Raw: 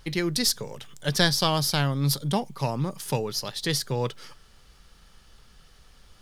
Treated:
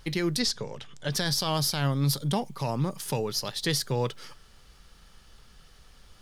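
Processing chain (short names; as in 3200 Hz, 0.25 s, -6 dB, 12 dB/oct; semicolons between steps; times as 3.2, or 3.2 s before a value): 0.4–1.12 LPF 5800 Hz 12 dB/oct; limiter -16.5 dBFS, peak gain reduction 10.5 dB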